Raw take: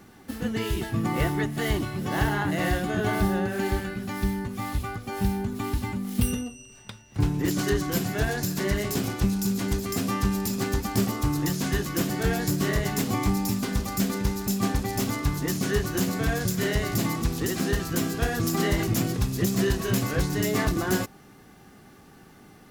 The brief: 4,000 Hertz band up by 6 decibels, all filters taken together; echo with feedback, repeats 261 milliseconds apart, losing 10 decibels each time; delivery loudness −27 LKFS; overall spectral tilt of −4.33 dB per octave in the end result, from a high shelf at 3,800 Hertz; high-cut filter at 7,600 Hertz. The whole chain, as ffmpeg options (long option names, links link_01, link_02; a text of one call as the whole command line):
ffmpeg -i in.wav -af "lowpass=7600,highshelf=frequency=3800:gain=7,equalizer=frequency=4000:width_type=o:gain=3.5,aecho=1:1:261|522|783|1044:0.316|0.101|0.0324|0.0104,volume=-1.5dB" out.wav